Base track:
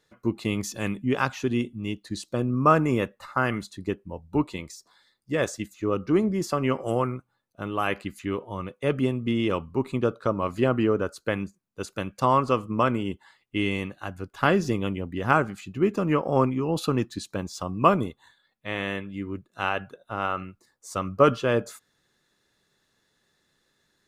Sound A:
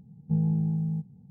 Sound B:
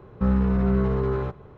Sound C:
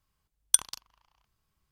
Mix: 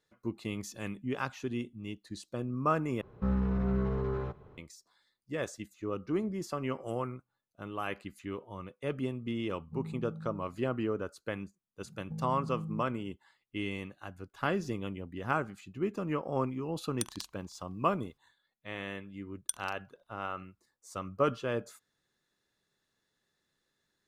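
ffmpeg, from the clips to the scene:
ffmpeg -i bed.wav -i cue0.wav -i cue1.wav -i cue2.wav -filter_complex "[1:a]asplit=2[link_01][link_02];[3:a]asplit=2[link_03][link_04];[0:a]volume=-10dB[link_05];[link_02]acompressor=threshold=-32dB:ratio=6:attack=3.2:release=140:knee=1:detection=peak[link_06];[link_03]acompressor=threshold=-30dB:ratio=6:attack=3.2:release=140:knee=1:detection=peak[link_07];[link_05]asplit=2[link_08][link_09];[link_08]atrim=end=3.014[link_10];[2:a]atrim=end=1.57,asetpts=PTS-STARTPTS,volume=-8.5dB[link_11];[link_09]atrim=start=4.576[link_12];[link_01]atrim=end=1.3,asetpts=PTS-STARTPTS,volume=-16dB,afade=type=in:duration=0.004:curve=hsin,afade=type=out:start_time=1.296:duration=0.004:curve=hsin,adelay=9420[link_13];[link_06]atrim=end=1.3,asetpts=PTS-STARTPTS,volume=-4.5dB,afade=type=in:duration=0.004:curve=hsin,afade=type=out:start_time=1.296:duration=0.004:curve=hsin,adelay=11810[link_14];[link_07]atrim=end=1.71,asetpts=PTS-STARTPTS,volume=-2dB,afade=type=in:duration=0.004:curve=hsin,afade=type=out:start_time=1.706:duration=0.004:curve=hsin,adelay=16470[link_15];[link_04]atrim=end=1.71,asetpts=PTS-STARTPTS,volume=-14dB,afade=type=in:duration=0.004:curve=hsin,afade=type=out:start_time=1.706:duration=0.004:curve=hsin,adelay=18950[link_16];[link_10][link_11]acrossfade=duration=0.004:curve1=hsin:curve2=hsin[link_17];[link_17][link_12]acrossfade=duration=0.004:curve1=hsin:curve2=hsin[link_18];[link_18][link_13][link_14][link_15][link_16]amix=inputs=5:normalize=0" out.wav

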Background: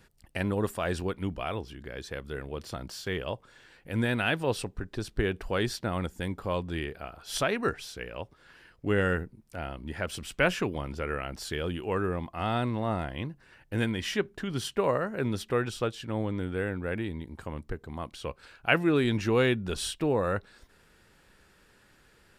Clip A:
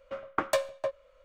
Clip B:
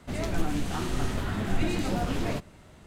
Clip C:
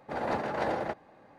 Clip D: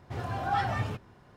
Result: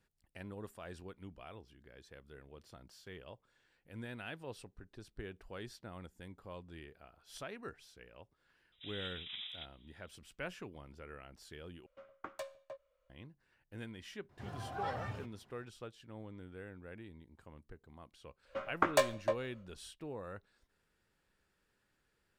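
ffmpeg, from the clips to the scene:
ffmpeg -i bed.wav -i cue0.wav -i cue1.wav -i cue2.wav -i cue3.wav -filter_complex "[1:a]asplit=2[link_01][link_02];[0:a]volume=-18dB[link_03];[3:a]lowpass=frequency=3400:width_type=q:width=0.5098,lowpass=frequency=3400:width_type=q:width=0.6013,lowpass=frequency=3400:width_type=q:width=0.9,lowpass=frequency=3400:width_type=q:width=2.563,afreqshift=-4000[link_04];[link_02]asplit=2[link_05][link_06];[link_06]adelay=21,volume=-9dB[link_07];[link_05][link_07]amix=inputs=2:normalize=0[link_08];[link_03]asplit=2[link_09][link_10];[link_09]atrim=end=11.864[link_11];[link_01]atrim=end=1.24,asetpts=PTS-STARTPTS,volume=-17.5dB[link_12];[link_10]atrim=start=13.096[link_13];[link_04]atrim=end=1.38,asetpts=PTS-STARTPTS,volume=-15.5dB,afade=type=in:duration=0.004:curve=hsin,afade=type=out:start_time=1.376:duration=0.004:curve=hsin,adelay=8720[link_14];[4:a]atrim=end=1.36,asetpts=PTS-STARTPTS,volume=-11.5dB,afade=type=in:duration=0.004:curve=hsin,afade=type=out:start_time=1.356:duration=0.004:curve=hsin,adelay=14290[link_15];[link_08]atrim=end=1.24,asetpts=PTS-STARTPTS,volume=-1dB,afade=type=in:duration=0.1,afade=type=out:start_time=1.14:duration=0.1,adelay=813204S[link_16];[link_11][link_12]acrossfade=duration=0.004:curve1=hsin:curve2=hsin[link_17];[link_17][link_13]acrossfade=duration=0.004:curve1=hsin:curve2=hsin[link_18];[link_18][link_14][link_15][link_16]amix=inputs=4:normalize=0" out.wav

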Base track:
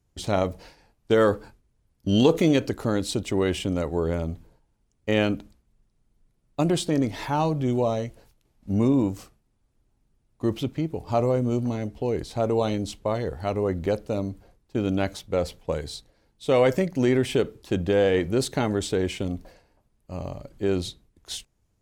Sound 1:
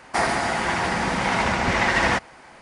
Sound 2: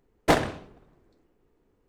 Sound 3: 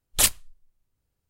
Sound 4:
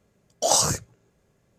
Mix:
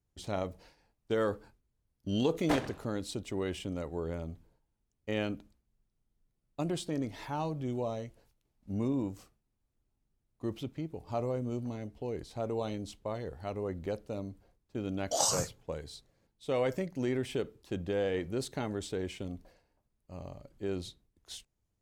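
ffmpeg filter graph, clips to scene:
ffmpeg -i bed.wav -i cue0.wav -i cue1.wav -i cue2.wav -i cue3.wav -filter_complex "[0:a]volume=-11dB[link_01];[2:a]atrim=end=1.88,asetpts=PTS-STARTPTS,volume=-11.5dB,afade=type=in:duration=0.004:curve=hsin,afade=type=out:start_time=1.876:duration=0.004:curve=hsin,adelay=2210[link_02];[4:a]atrim=end=1.58,asetpts=PTS-STARTPTS,volume=-9dB,afade=type=in:duration=0.004:curve=hsin,afade=type=out:start_time=1.576:duration=0.004:curve=hsin,adelay=14690[link_03];[link_01][link_02][link_03]amix=inputs=3:normalize=0" out.wav

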